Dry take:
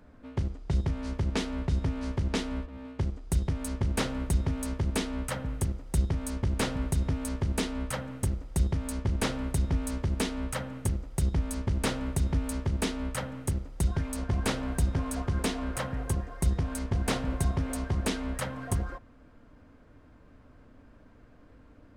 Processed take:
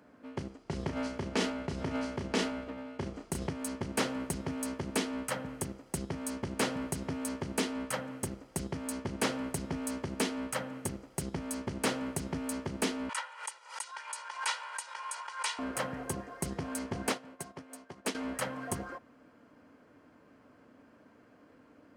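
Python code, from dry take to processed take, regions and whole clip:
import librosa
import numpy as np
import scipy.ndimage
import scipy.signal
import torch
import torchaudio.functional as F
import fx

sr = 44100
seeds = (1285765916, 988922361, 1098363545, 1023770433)

y = fx.chain(x, sr, fx.high_shelf(hz=8000.0, db=-3.5),
    fx.doubler(ms=32.0, db=-6.0),
    fx.sustainer(db_per_s=44.0), at=(0.63, 3.51))
y = fx.chain(y, sr, fx.ellip_bandpass(low_hz=910.0, high_hz=9400.0, order=3, stop_db=50),
    fx.comb(ms=2.1, depth=0.69),
    fx.pre_swell(db_per_s=120.0), at=(13.09, 15.59))
y = fx.chain(y, sr, fx.highpass(hz=83.0, slope=12),
    fx.low_shelf(hz=180.0, db=-8.5),
    fx.upward_expand(threshold_db=-40.0, expansion=2.5), at=(17.09, 18.15))
y = scipy.signal.sosfilt(scipy.signal.butter(2, 210.0, 'highpass', fs=sr, output='sos'), y)
y = fx.notch(y, sr, hz=3700.0, q=11.0)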